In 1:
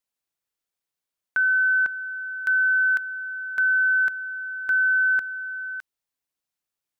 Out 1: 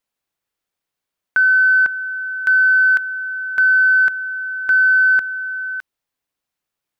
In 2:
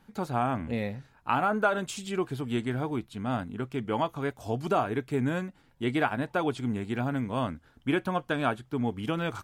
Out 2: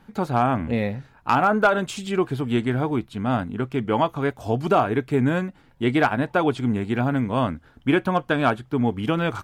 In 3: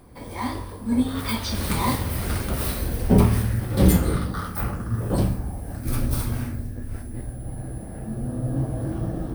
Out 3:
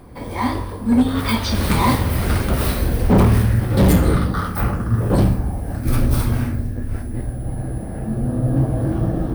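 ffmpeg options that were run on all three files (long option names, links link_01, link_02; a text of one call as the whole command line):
ffmpeg -i in.wav -filter_complex "[0:a]asplit=2[link_01][link_02];[link_02]adynamicsmooth=sensitivity=1.5:basefreq=5100,volume=-2dB[link_03];[link_01][link_03]amix=inputs=2:normalize=0,volume=11.5dB,asoftclip=hard,volume=-11.5dB,volume=2.5dB" out.wav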